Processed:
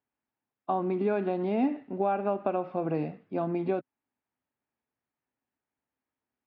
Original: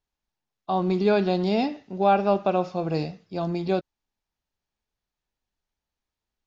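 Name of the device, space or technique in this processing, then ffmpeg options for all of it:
bass amplifier: -af "acompressor=threshold=-24dB:ratio=6,highpass=frequency=84:width=0.5412,highpass=frequency=84:width=1.3066,equalizer=frequency=86:width_type=q:width=4:gain=-10,equalizer=frequency=180:width_type=q:width=4:gain=-6,equalizer=frequency=260:width_type=q:width=4:gain=8,lowpass=frequency=2400:width=0.5412,lowpass=frequency=2400:width=1.3066"

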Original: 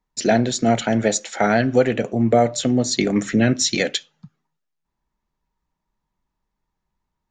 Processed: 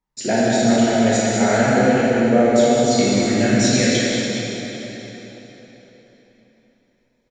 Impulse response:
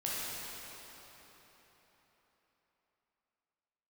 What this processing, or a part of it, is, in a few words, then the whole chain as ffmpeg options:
cave: -filter_complex "[0:a]aecho=1:1:189:0.398[link_01];[1:a]atrim=start_sample=2205[link_02];[link_01][link_02]afir=irnorm=-1:irlink=0,volume=-3dB"

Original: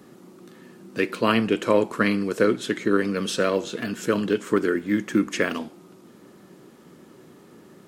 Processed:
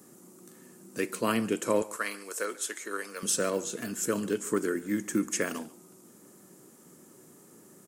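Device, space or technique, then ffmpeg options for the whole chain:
budget condenser microphone: -filter_complex "[0:a]highpass=85,highshelf=frequency=5400:width_type=q:width=1.5:gain=13,asettb=1/sr,asplit=3[link_01][link_02][link_03];[link_01]atrim=end=1.824[link_04];[link_02]atrim=start=1.82:end=3.23,asetpts=PTS-STARTPTS,afade=type=in:duration=0.004:curve=qsin,afade=type=out:start_time=1.406:duration=0.004:curve=qsin,highpass=680[link_05];[link_03]atrim=start=3.226[link_06];[link_04][link_05]acrossfade=duration=0.004:curve1=hsin:curve2=qsin[link_07];[link_07][link_06]acrossfade=duration=0.004:curve1=qsin:curve2=hsin,aecho=1:1:141:0.0841,volume=-7dB"

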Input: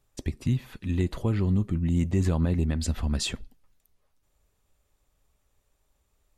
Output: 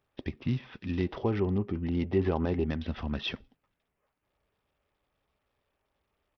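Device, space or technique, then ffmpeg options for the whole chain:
Bluetooth headset: -filter_complex "[0:a]asettb=1/sr,asplit=3[link_01][link_02][link_03];[link_01]atrim=end=1.074[link_04];[link_02]atrim=start=1.07:end=2.67,asetpts=PTS-STARTPTS,afade=type=in:duration=0.004:curve=qsin,afade=type=out:start_time=1.596:duration=0.004:curve=qsin,equalizer=frequency=160:width_type=o:width=0.33:gain=-6,equalizer=frequency=400:width_type=o:width=0.33:gain=8,equalizer=frequency=800:width_type=o:width=0.33:gain=7[link_05];[link_03]atrim=start=2.666[link_06];[link_04][link_05]acrossfade=duration=0.004:curve1=hsin:curve2=qsin[link_07];[link_07][link_06]acrossfade=duration=0.004:curve1=qsin:curve2=hsin,highpass=frequency=200:poles=1,aresample=8000,aresample=44100" -ar 44100 -c:a sbc -b:a 64k

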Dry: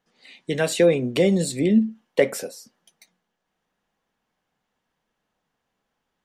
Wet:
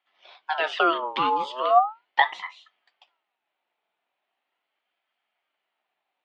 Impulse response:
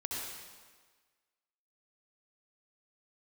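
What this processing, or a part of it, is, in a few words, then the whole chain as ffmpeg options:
voice changer toy: -af "aeval=exprs='val(0)*sin(2*PI*1100*n/s+1100*0.4/0.39*sin(2*PI*0.39*n/s))':channel_layout=same,highpass=480,equalizer=frequency=490:width_type=q:width=4:gain=-7,equalizer=frequency=720:width_type=q:width=4:gain=5,equalizer=frequency=1100:width_type=q:width=4:gain=-4,equalizer=frequency=1600:width_type=q:width=4:gain=-5,equalizer=frequency=3100:width_type=q:width=4:gain=4,lowpass=frequency=3600:width=0.5412,lowpass=frequency=3600:width=1.3066,volume=2dB"

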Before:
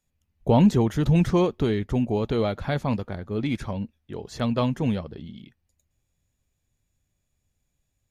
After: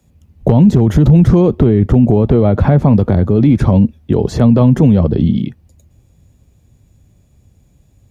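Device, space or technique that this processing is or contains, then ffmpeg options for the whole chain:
mastering chain: -filter_complex "[0:a]asettb=1/sr,asplit=3[link_01][link_02][link_03];[link_01]atrim=end=1.554[link_04];[link_02]atrim=start=1.55:end=2.98,asetpts=PTS-STARTPTS,afade=type=in:duration=0.004:curve=qsin,afade=type=out:start_time=1.426:duration=0.004:curve=qsin,acrossover=split=2600[link_05][link_06];[link_06]acompressor=threshold=-57dB:ratio=4:attack=1:release=60[link_07];[link_05][link_07]amix=inputs=2:normalize=0[link_08];[link_03]atrim=start=2.976[link_09];[link_04][link_08]acrossfade=duration=0.004:curve1=hsin:curve2=qsin[link_10];[link_10][link_09]acrossfade=duration=0.004:curve1=qsin:curve2=hsin,highpass=49,equalizer=frequency=1700:width_type=o:width=0.77:gain=-2.5,acrossover=split=150|2000[link_11][link_12][link_13];[link_11]acompressor=threshold=-25dB:ratio=4[link_14];[link_12]acompressor=threshold=-23dB:ratio=4[link_15];[link_13]acompressor=threshold=-46dB:ratio=4[link_16];[link_14][link_15][link_16]amix=inputs=3:normalize=0,acompressor=threshold=-26dB:ratio=2,tiltshelf=frequency=750:gain=7,asoftclip=type=hard:threshold=-13.5dB,alimiter=level_in=22.5dB:limit=-1dB:release=50:level=0:latency=1,volume=-1dB"

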